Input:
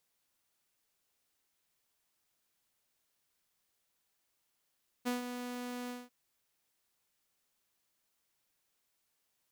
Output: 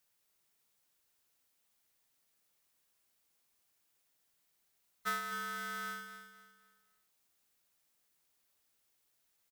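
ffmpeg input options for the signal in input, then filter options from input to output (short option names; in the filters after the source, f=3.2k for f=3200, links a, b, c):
-f lavfi -i "aevalsrc='0.0398*(2*mod(246*t,1)-1)':d=1.043:s=44100,afade=t=in:d=0.025,afade=t=out:st=0.025:d=0.138:silence=0.376,afade=t=out:st=0.84:d=0.203"
-af "afftfilt=real='real(if(lt(b,960),b+48*(1-2*mod(floor(b/48),2)),b),0)':imag='imag(if(lt(b,960),b+48*(1-2*mod(floor(b/48),2)),b),0)':win_size=2048:overlap=0.75,highshelf=f=9.6k:g=4,aecho=1:1:255|510|765|1020:0.335|0.117|0.041|0.0144"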